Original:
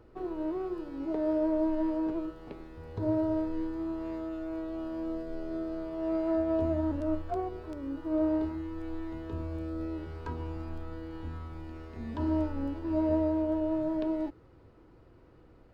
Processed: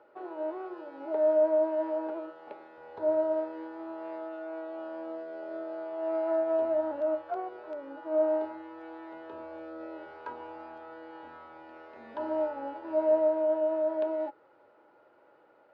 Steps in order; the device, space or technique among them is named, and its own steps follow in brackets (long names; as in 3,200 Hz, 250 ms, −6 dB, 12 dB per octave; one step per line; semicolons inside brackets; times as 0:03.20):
tin-can telephone (band-pass filter 510–3,100 Hz; hollow resonant body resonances 600/840/1,400 Hz, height 13 dB, ringing for 55 ms)